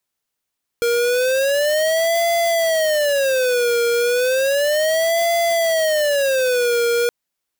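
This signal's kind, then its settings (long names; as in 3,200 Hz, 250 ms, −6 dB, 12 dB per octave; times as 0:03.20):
siren wail 471–680 Hz 0.33 per second square −17.5 dBFS 6.27 s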